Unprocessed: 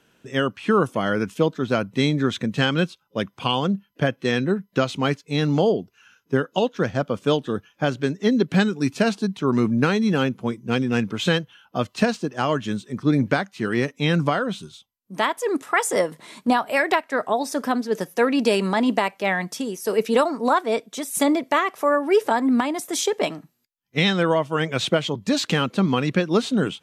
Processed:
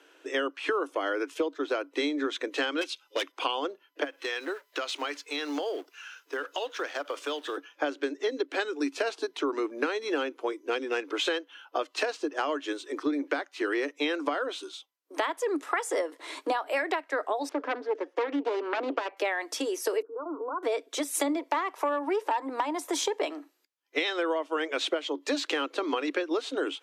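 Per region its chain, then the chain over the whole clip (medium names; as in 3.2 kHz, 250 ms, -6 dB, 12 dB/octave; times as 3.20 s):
2.81–3.32 s: high-order bell 4.8 kHz +11.5 dB 2.9 oct + overload inside the chain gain 20 dB
4.04–7.57 s: companding laws mixed up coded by mu + high-pass 1.2 kHz 6 dB/octave + compression 4:1, threshold -31 dBFS
17.49–19.17 s: self-modulated delay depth 0.49 ms + tape spacing loss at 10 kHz 33 dB
20.02–20.63 s: compression 3:1, threshold -33 dBFS + rippled Chebyshev low-pass 1.5 kHz, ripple 9 dB
21.39–23.20 s: peaking EQ 940 Hz +12 dB 0.27 oct + valve stage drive 10 dB, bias 0.35
whole clip: Chebyshev high-pass 280 Hz, order 8; treble shelf 8.9 kHz -10 dB; compression 6:1, threshold -31 dBFS; trim +4.5 dB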